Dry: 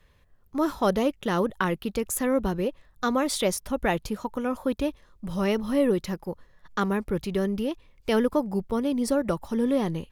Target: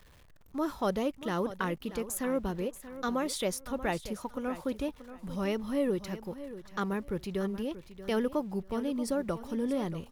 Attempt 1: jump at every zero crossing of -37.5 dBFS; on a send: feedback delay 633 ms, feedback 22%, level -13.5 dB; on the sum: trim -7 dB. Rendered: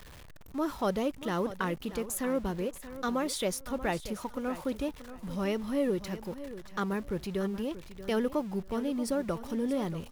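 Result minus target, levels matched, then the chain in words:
jump at every zero crossing: distortion +9 dB
jump at every zero crossing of -47.5 dBFS; on a send: feedback delay 633 ms, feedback 22%, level -13.5 dB; on the sum: trim -7 dB

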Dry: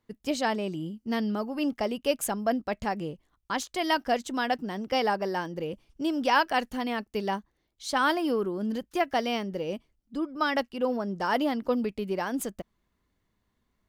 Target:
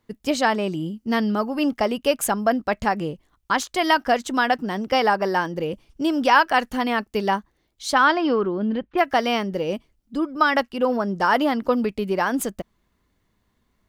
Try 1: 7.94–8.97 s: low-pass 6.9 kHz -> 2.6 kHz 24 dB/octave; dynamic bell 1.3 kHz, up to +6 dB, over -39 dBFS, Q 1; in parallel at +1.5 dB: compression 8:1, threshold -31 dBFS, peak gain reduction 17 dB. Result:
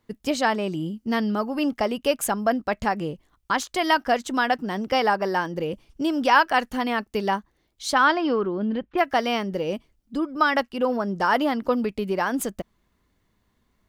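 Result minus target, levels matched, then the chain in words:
compression: peak gain reduction +6 dB
7.94–8.97 s: low-pass 6.9 kHz -> 2.6 kHz 24 dB/octave; dynamic bell 1.3 kHz, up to +6 dB, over -39 dBFS, Q 1; in parallel at +1.5 dB: compression 8:1, threshold -24 dBFS, peak gain reduction 11 dB

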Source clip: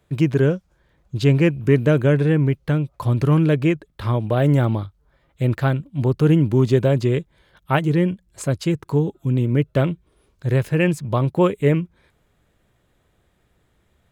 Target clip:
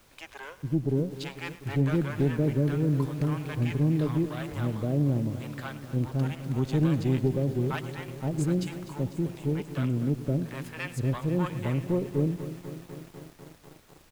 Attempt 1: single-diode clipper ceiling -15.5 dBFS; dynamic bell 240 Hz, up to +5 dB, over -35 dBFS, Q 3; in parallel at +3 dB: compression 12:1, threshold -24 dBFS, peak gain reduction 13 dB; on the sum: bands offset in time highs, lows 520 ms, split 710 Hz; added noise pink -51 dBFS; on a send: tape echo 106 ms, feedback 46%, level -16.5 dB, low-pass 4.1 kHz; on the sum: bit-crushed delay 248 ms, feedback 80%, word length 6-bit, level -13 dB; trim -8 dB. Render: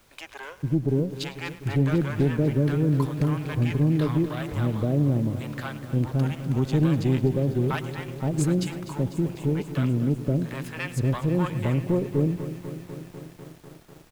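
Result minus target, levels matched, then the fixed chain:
compression: peak gain reduction +13 dB
single-diode clipper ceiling -15.5 dBFS; dynamic bell 240 Hz, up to +5 dB, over -35 dBFS, Q 3; bands offset in time highs, lows 520 ms, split 710 Hz; added noise pink -51 dBFS; on a send: tape echo 106 ms, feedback 46%, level -16.5 dB, low-pass 4.1 kHz; on the sum: bit-crushed delay 248 ms, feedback 80%, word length 6-bit, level -13 dB; trim -8 dB

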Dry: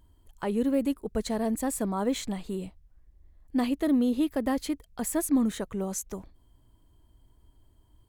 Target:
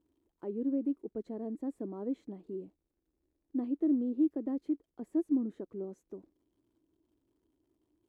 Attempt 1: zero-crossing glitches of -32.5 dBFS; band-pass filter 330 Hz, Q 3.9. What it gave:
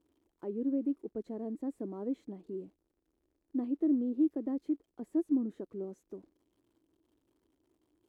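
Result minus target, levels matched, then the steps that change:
zero-crossing glitches: distortion +6 dB
change: zero-crossing glitches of -39 dBFS

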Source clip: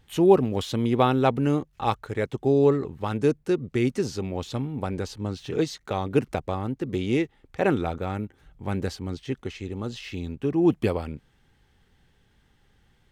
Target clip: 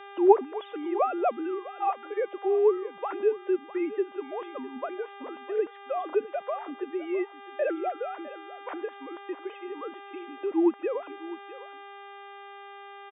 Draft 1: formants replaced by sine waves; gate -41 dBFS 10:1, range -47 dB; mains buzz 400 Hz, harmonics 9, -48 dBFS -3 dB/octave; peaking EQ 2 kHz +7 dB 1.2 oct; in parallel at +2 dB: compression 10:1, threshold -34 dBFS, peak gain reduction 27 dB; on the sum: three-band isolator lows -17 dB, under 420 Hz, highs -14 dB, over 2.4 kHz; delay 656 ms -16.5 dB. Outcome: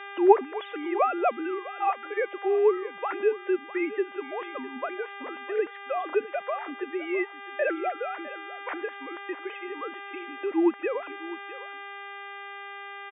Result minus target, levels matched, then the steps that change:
2 kHz band +8.5 dB
change: peaking EQ 2 kHz -4 dB 1.2 oct

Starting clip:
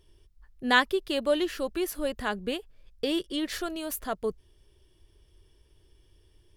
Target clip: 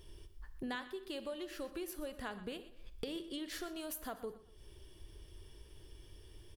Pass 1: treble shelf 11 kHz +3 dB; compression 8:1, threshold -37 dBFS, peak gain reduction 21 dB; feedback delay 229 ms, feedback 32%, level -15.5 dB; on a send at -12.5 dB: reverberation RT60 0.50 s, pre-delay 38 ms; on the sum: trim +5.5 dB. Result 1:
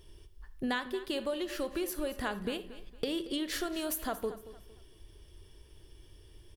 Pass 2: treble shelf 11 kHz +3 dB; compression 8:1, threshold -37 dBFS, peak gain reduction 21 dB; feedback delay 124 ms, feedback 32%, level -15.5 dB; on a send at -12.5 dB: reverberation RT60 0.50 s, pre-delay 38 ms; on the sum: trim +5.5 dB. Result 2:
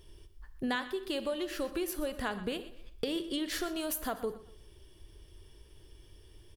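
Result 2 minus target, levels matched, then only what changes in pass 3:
compression: peak gain reduction -8.5 dB
change: compression 8:1, threshold -46.5 dBFS, peak gain reduction 29.5 dB

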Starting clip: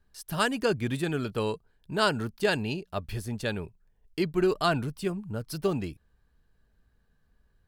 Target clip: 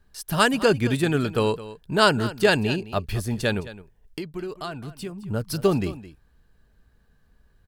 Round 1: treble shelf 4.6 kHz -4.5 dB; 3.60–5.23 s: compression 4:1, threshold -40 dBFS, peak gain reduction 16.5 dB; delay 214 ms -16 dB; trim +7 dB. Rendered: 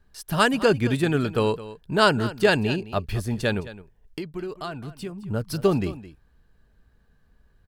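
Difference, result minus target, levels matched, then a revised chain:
8 kHz band -3.0 dB
3.60–5.23 s: compression 4:1, threshold -40 dBFS, peak gain reduction 16.5 dB; delay 214 ms -16 dB; trim +7 dB

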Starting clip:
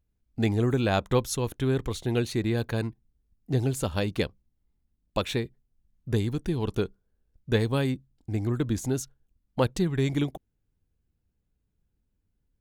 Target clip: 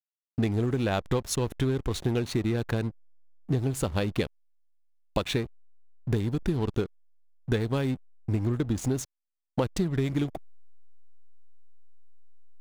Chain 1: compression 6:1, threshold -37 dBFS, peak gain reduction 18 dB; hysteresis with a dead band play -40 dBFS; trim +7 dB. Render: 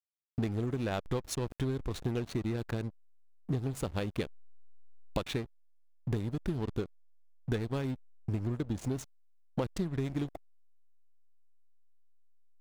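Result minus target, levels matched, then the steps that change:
compression: peak gain reduction +6 dB
change: compression 6:1, threshold -30 dBFS, peak gain reduction 12 dB

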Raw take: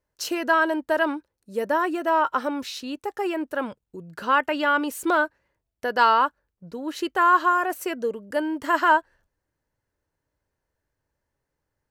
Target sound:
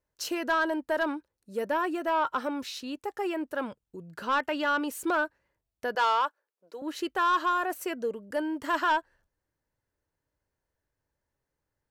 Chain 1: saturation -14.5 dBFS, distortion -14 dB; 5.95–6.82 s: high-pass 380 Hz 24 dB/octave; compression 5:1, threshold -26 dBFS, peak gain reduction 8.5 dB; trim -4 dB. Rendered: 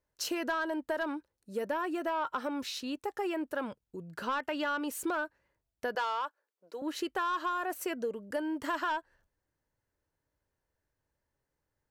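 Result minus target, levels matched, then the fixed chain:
compression: peak gain reduction +8.5 dB
saturation -14.5 dBFS, distortion -14 dB; 5.95–6.82 s: high-pass 380 Hz 24 dB/octave; trim -4 dB

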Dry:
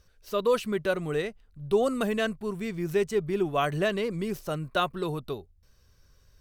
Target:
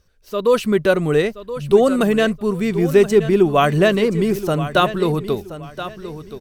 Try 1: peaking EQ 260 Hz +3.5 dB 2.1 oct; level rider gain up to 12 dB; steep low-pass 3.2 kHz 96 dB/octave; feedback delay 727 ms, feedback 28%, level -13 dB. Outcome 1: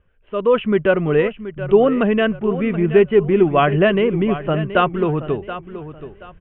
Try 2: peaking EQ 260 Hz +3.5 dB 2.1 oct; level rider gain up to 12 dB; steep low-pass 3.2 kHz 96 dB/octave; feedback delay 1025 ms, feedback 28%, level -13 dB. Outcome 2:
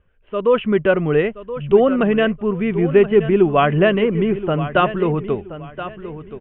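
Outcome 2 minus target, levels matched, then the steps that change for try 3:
4 kHz band -4.0 dB
remove: steep low-pass 3.2 kHz 96 dB/octave

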